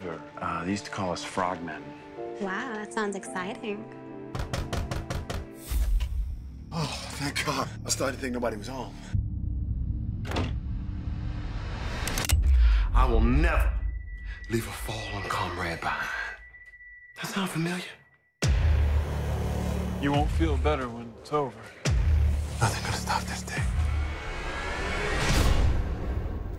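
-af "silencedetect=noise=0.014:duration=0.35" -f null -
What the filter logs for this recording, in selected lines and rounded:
silence_start: 16.36
silence_end: 17.16 | silence_duration: 0.81
silence_start: 17.91
silence_end: 18.42 | silence_duration: 0.51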